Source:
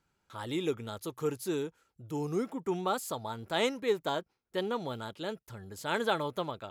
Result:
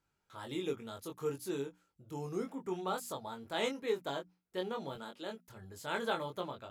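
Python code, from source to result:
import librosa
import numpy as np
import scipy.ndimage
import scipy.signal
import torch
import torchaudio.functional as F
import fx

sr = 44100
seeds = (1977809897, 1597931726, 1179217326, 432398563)

y = fx.highpass(x, sr, hz=190.0, slope=24, at=(4.95, 5.48))
y = fx.hum_notches(y, sr, base_hz=60, count=5)
y = fx.doubler(y, sr, ms=22.0, db=-4.0)
y = y * librosa.db_to_amplitude(-6.5)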